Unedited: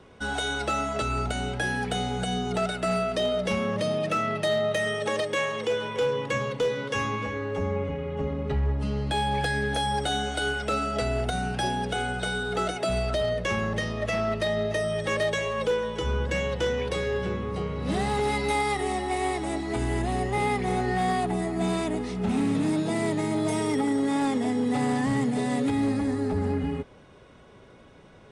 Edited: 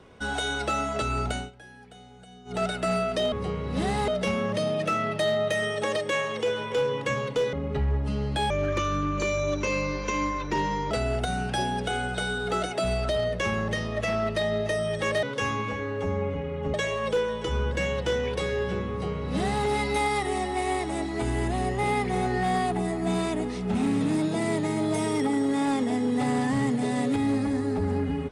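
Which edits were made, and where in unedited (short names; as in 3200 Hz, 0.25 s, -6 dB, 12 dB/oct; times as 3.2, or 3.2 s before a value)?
1.34–2.62 dip -20.5 dB, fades 0.17 s
6.77–8.28 move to 15.28
9.25–10.96 speed 71%
17.44–18.2 copy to 3.32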